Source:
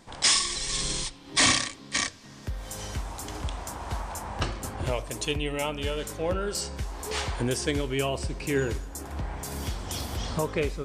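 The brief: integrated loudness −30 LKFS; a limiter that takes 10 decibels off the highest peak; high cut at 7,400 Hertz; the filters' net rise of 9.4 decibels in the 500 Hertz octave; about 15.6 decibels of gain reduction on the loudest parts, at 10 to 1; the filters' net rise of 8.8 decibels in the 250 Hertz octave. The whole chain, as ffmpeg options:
ffmpeg -i in.wav -af "lowpass=7400,equalizer=frequency=250:width_type=o:gain=8,equalizer=frequency=500:width_type=o:gain=9,acompressor=threshold=-30dB:ratio=10,volume=6.5dB,alimiter=limit=-20.5dB:level=0:latency=1" out.wav

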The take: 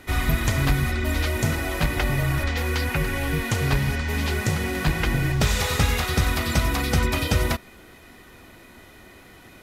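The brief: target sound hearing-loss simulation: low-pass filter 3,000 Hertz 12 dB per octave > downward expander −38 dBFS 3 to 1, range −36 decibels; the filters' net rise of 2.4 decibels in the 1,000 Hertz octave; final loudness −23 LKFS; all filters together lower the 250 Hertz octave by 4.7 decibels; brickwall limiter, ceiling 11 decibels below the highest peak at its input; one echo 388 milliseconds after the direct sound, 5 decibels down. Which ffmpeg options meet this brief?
ffmpeg -i in.wav -af "equalizer=frequency=250:width_type=o:gain=-7.5,equalizer=frequency=1000:width_type=o:gain=3.5,alimiter=limit=-19.5dB:level=0:latency=1,lowpass=3000,aecho=1:1:388:0.562,agate=range=-36dB:threshold=-38dB:ratio=3,volume=5.5dB" out.wav

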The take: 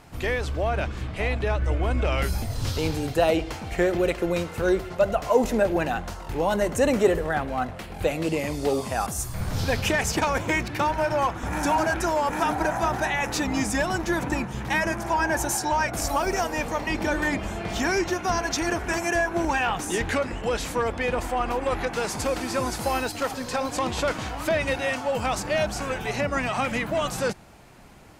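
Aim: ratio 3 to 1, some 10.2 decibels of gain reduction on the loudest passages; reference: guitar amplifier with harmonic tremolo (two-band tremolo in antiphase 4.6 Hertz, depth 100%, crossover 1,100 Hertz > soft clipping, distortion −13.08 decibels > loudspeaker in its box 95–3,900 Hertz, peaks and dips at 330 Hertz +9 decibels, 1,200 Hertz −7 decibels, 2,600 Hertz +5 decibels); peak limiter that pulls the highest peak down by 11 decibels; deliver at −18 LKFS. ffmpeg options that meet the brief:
ffmpeg -i in.wav -filter_complex "[0:a]acompressor=threshold=-29dB:ratio=3,alimiter=level_in=1.5dB:limit=-24dB:level=0:latency=1,volume=-1.5dB,acrossover=split=1100[link_01][link_02];[link_01]aeval=exprs='val(0)*(1-1/2+1/2*cos(2*PI*4.6*n/s))':channel_layout=same[link_03];[link_02]aeval=exprs='val(0)*(1-1/2-1/2*cos(2*PI*4.6*n/s))':channel_layout=same[link_04];[link_03][link_04]amix=inputs=2:normalize=0,asoftclip=threshold=-35dB,highpass=95,equalizer=frequency=330:width_type=q:width=4:gain=9,equalizer=frequency=1200:width_type=q:width=4:gain=-7,equalizer=frequency=2600:width_type=q:width=4:gain=5,lowpass=frequency=3900:width=0.5412,lowpass=frequency=3900:width=1.3066,volume=22.5dB" out.wav

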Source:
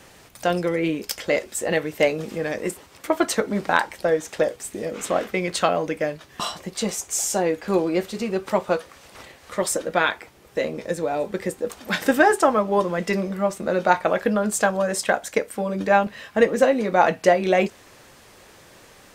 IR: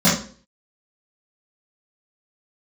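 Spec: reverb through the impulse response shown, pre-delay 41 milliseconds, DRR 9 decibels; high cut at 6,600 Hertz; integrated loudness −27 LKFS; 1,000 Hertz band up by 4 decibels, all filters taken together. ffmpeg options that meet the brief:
-filter_complex "[0:a]lowpass=6600,equalizer=frequency=1000:width_type=o:gain=5.5,asplit=2[link_01][link_02];[1:a]atrim=start_sample=2205,adelay=41[link_03];[link_02][link_03]afir=irnorm=-1:irlink=0,volume=-30dB[link_04];[link_01][link_04]amix=inputs=2:normalize=0,volume=-7.5dB"

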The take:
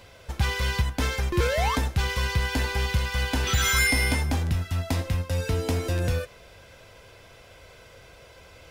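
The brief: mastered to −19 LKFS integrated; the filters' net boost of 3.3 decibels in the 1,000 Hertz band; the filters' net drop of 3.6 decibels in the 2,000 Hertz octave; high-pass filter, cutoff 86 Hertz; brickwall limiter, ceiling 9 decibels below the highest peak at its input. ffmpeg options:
ffmpeg -i in.wav -af "highpass=86,equalizer=frequency=1000:width_type=o:gain=5.5,equalizer=frequency=2000:width_type=o:gain=-6,volume=11dB,alimiter=limit=-9.5dB:level=0:latency=1" out.wav

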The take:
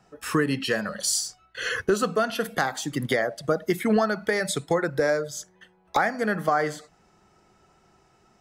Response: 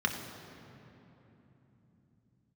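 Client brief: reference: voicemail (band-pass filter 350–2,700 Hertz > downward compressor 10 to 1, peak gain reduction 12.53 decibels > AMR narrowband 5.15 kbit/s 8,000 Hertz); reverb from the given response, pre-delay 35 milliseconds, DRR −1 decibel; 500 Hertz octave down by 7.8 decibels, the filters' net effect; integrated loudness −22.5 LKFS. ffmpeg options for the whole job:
-filter_complex "[0:a]equalizer=frequency=500:width_type=o:gain=-8.5,asplit=2[link_01][link_02];[1:a]atrim=start_sample=2205,adelay=35[link_03];[link_02][link_03]afir=irnorm=-1:irlink=0,volume=-7.5dB[link_04];[link_01][link_04]amix=inputs=2:normalize=0,highpass=350,lowpass=2700,acompressor=threshold=-30dB:ratio=10,volume=15dB" -ar 8000 -c:a libopencore_amrnb -b:a 5150

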